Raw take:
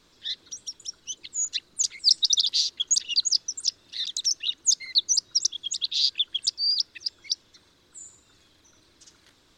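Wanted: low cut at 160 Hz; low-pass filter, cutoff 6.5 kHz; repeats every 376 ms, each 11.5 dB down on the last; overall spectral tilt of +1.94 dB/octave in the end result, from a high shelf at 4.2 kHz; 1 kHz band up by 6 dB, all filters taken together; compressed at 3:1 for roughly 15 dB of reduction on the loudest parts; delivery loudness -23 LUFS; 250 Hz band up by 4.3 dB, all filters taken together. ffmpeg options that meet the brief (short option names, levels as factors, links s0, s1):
-af "highpass=160,lowpass=6500,equalizer=f=250:t=o:g=6,equalizer=f=1000:t=o:g=8,highshelf=f=4200:g=-8.5,acompressor=threshold=0.00794:ratio=3,aecho=1:1:376|752|1128:0.266|0.0718|0.0194,volume=7.5"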